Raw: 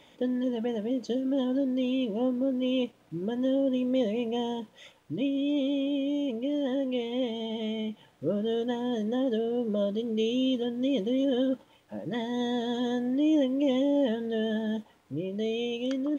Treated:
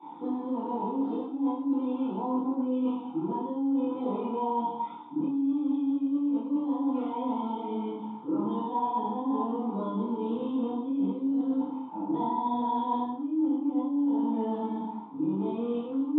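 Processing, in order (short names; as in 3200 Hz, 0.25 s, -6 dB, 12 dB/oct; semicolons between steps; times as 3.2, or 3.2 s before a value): G.711 law mismatch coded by mu; thirty-one-band EQ 250 Hz -11 dB, 1000 Hz +7 dB, 2000 Hz -10 dB; in parallel at -9 dB: decimation with a swept rate 8×, swing 160% 0.21 Hz; on the sum: air absorption 230 m; reverb RT60 1.1 s, pre-delay 3 ms, DRR -14 dB; chorus voices 2, 0.19 Hz, delay 27 ms, depth 1.3 ms; vowel filter u; reverse; compressor 16:1, threshold -24 dBFS, peak gain reduction 21.5 dB; reverse; HPF 160 Hz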